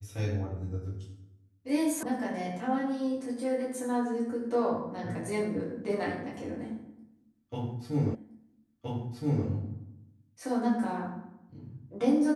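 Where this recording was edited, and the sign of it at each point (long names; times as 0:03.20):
0:02.03: cut off before it has died away
0:08.15: the same again, the last 1.32 s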